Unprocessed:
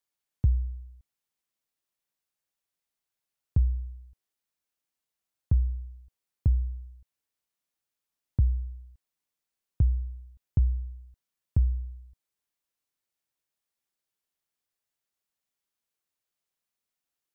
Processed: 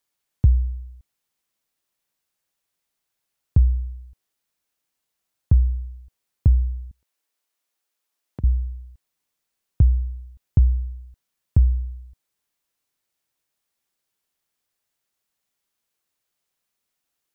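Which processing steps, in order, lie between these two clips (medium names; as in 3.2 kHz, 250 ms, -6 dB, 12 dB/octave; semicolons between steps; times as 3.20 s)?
6.91–8.44 s: high-pass 320 Hz 12 dB/octave; trim +7.5 dB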